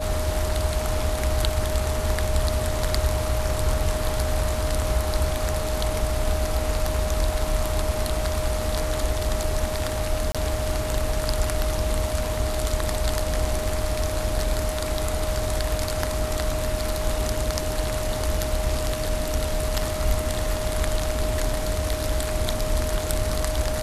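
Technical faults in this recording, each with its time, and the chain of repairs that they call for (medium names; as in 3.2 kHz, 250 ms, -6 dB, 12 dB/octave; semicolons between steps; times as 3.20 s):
whine 620 Hz -29 dBFS
10.32–10.35 s: dropout 26 ms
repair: band-stop 620 Hz, Q 30; interpolate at 10.32 s, 26 ms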